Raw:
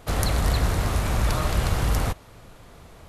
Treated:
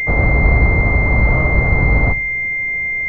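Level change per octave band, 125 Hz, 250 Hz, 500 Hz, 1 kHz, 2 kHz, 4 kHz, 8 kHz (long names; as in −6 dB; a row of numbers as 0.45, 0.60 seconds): +9.0 dB, +9.5 dB, +9.0 dB, +5.5 dB, +20.5 dB, below −15 dB, below −20 dB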